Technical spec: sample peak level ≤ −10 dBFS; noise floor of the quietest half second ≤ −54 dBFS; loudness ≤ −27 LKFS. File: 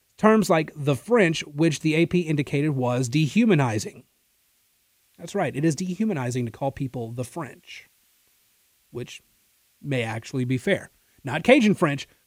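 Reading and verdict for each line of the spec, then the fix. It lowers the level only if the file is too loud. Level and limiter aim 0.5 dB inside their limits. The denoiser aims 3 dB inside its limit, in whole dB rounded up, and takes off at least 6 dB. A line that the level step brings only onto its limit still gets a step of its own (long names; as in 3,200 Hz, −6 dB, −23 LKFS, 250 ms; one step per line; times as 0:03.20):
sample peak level −2.5 dBFS: out of spec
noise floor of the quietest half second −66 dBFS: in spec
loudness −23.5 LKFS: out of spec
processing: level −4 dB
brickwall limiter −10.5 dBFS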